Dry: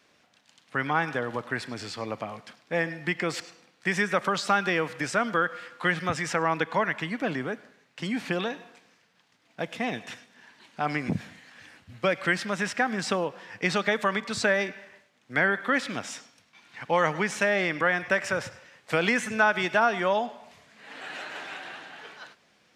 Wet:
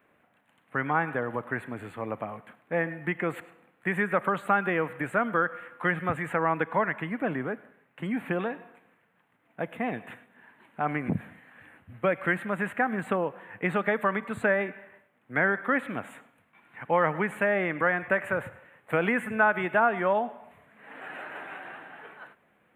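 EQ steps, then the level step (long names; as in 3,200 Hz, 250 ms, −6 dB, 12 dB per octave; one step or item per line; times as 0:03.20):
Butterworth band-reject 5,300 Hz, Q 0.56
0.0 dB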